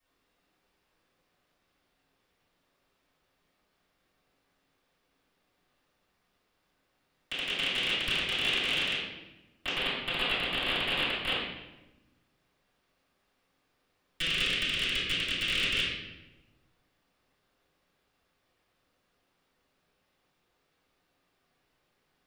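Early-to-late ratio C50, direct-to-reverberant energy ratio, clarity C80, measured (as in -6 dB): 0.0 dB, -15.0 dB, 3.0 dB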